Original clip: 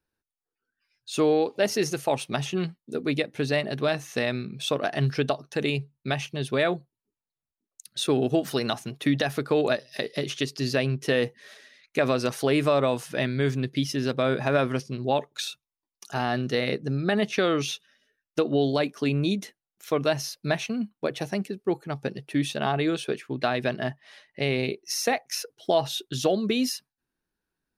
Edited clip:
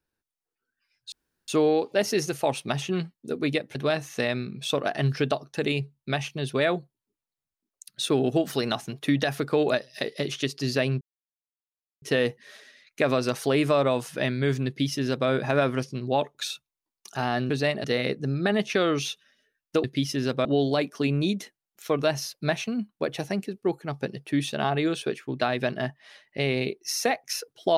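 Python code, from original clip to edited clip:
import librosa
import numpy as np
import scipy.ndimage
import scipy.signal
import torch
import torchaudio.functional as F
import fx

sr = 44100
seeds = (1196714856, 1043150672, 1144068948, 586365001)

y = fx.edit(x, sr, fx.insert_room_tone(at_s=1.12, length_s=0.36),
    fx.move(start_s=3.39, length_s=0.34, to_s=16.47),
    fx.insert_silence(at_s=10.99, length_s=1.01),
    fx.duplicate(start_s=13.64, length_s=0.61, to_s=18.47), tone=tone)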